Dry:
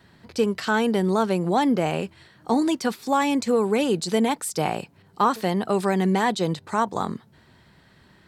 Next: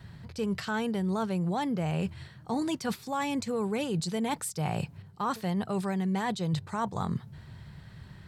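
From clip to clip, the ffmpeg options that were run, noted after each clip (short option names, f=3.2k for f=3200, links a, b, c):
-af "lowshelf=f=190:t=q:w=1.5:g=10.5,areverse,acompressor=threshold=-28dB:ratio=6,areverse"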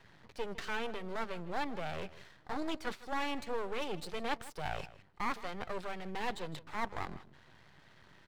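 -filter_complex "[0:a]acrossover=split=290 4200:gain=0.126 1 0.141[a][b][c];[a][b][c]amix=inputs=3:normalize=0,aeval=exprs='max(val(0),0)':c=same,asplit=2[d][e];[e]adelay=157.4,volume=-17dB,highshelf=f=4k:g=-3.54[f];[d][f]amix=inputs=2:normalize=0,volume=1dB"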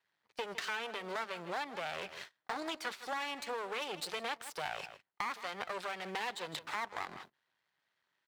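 -af "agate=range=-30dB:threshold=-51dB:ratio=16:detection=peak,highpass=f=1k:p=1,acompressor=threshold=-49dB:ratio=4,volume=12.5dB"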